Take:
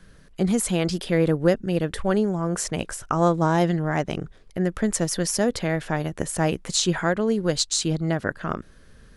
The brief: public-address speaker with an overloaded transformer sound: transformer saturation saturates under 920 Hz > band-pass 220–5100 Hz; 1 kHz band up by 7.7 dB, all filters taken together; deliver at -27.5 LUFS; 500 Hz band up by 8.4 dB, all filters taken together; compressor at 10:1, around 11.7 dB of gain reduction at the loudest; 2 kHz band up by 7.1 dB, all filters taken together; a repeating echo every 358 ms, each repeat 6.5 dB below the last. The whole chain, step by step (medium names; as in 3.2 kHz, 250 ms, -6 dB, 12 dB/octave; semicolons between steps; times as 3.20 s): peaking EQ 500 Hz +8.5 dB; peaking EQ 1 kHz +5.5 dB; peaking EQ 2 kHz +6.5 dB; compression 10:1, threshold -17 dBFS; feedback delay 358 ms, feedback 47%, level -6.5 dB; transformer saturation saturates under 920 Hz; band-pass 220–5100 Hz; trim -2.5 dB